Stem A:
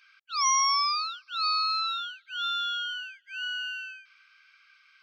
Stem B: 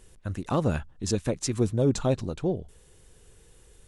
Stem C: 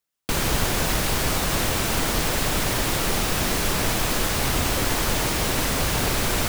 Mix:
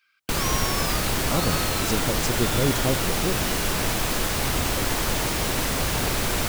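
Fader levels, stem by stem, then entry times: -8.0 dB, -1.0 dB, -1.5 dB; 0.00 s, 0.80 s, 0.00 s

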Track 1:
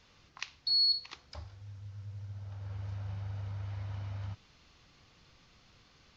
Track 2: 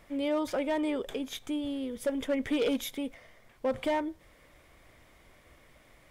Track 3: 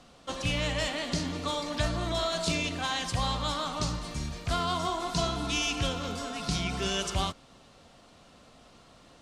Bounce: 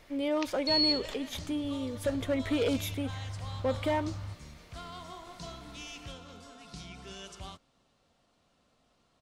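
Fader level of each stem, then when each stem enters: -0.5 dB, -0.5 dB, -15.0 dB; 0.00 s, 0.00 s, 0.25 s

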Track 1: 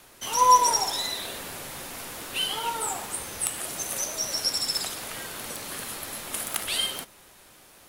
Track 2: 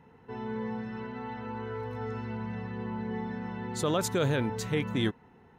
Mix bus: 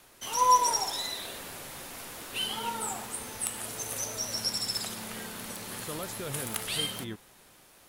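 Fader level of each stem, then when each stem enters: -4.5 dB, -11.0 dB; 0.00 s, 2.05 s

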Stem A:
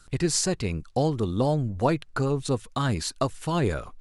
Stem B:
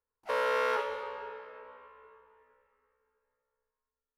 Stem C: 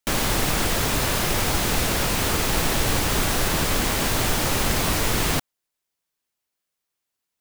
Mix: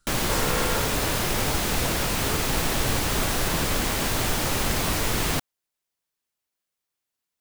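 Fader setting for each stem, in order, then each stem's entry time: -13.0 dB, -1.0 dB, -2.5 dB; 0.00 s, 0.00 s, 0.00 s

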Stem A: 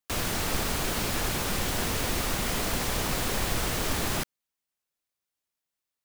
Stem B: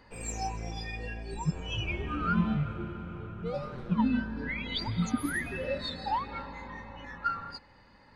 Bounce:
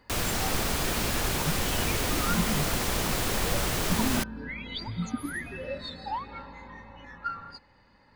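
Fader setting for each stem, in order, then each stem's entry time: +0.5 dB, -2.5 dB; 0.00 s, 0.00 s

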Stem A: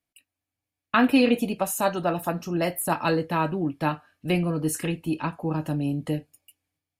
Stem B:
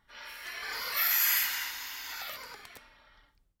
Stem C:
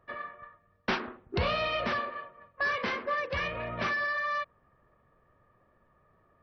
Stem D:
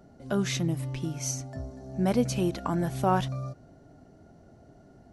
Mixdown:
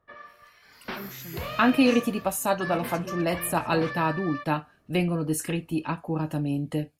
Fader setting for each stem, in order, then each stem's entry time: -1.0 dB, -17.5 dB, -6.0 dB, -14.0 dB; 0.65 s, 0.00 s, 0.00 s, 0.65 s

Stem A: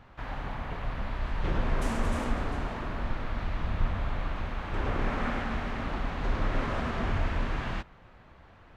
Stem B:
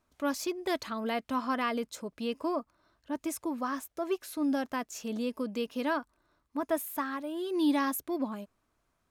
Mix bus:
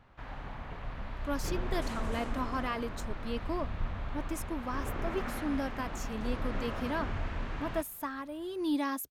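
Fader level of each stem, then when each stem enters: -6.5 dB, -4.0 dB; 0.00 s, 1.05 s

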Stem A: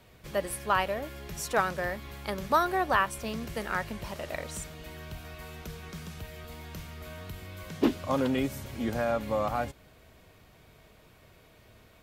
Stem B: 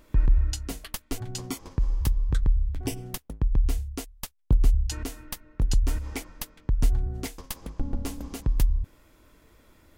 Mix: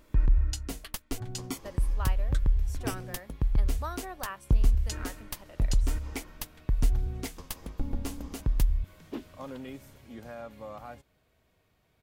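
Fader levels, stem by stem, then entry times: -13.5 dB, -2.5 dB; 1.30 s, 0.00 s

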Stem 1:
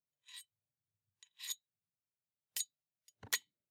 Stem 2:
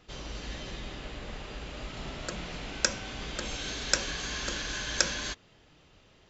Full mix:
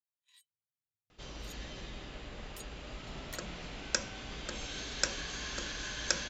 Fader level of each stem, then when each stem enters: -11.5 dB, -5.0 dB; 0.00 s, 1.10 s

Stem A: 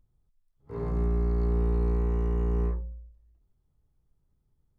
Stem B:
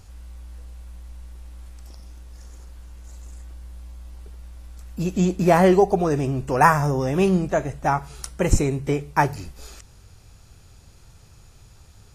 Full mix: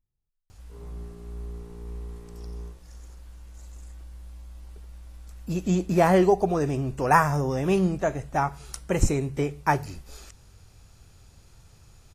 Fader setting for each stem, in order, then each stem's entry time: -13.5 dB, -3.5 dB; 0.00 s, 0.50 s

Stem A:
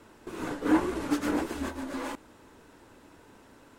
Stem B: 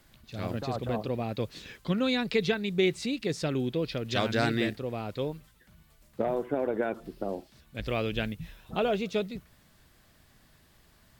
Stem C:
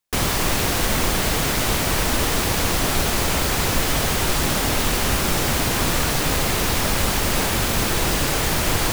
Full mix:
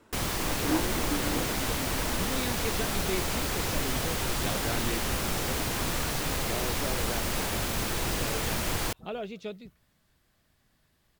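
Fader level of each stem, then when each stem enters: -5.0 dB, -8.5 dB, -9.5 dB; 0.00 s, 0.30 s, 0.00 s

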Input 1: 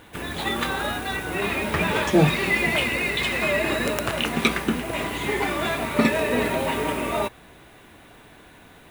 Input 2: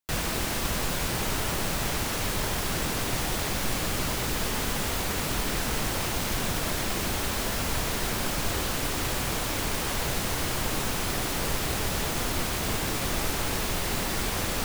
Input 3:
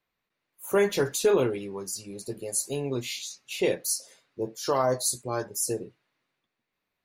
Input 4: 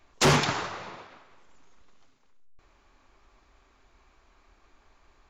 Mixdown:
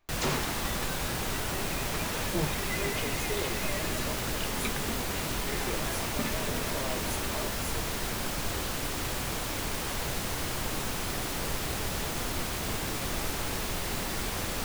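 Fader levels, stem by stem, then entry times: -15.0 dB, -4.0 dB, -14.5 dB, -10.5 dB; 0.20 s, 0.00 s, 2.05 s, 0.00 s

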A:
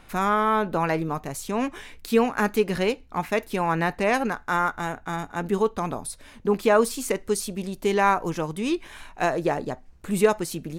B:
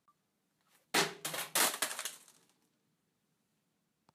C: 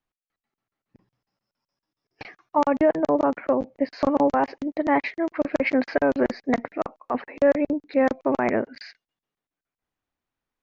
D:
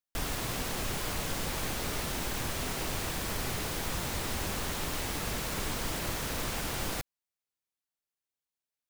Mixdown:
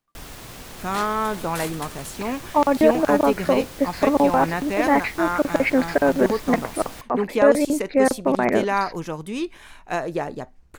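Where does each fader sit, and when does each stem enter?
-2.0 dB, -4.0 dB, +2.5 dB, -5.0 dB; 0.70 s, 0.00 s, 0.00 s, 0.00 s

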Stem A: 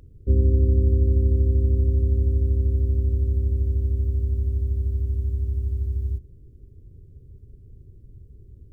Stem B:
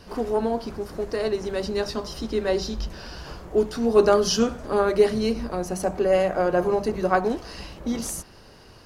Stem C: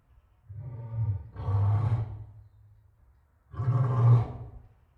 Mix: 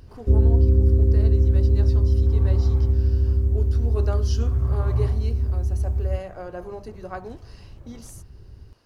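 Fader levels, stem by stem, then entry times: +2.0 dB, -13.5 dB, -6.5 dB; 0.00 s, 0.00 s, 0.90 s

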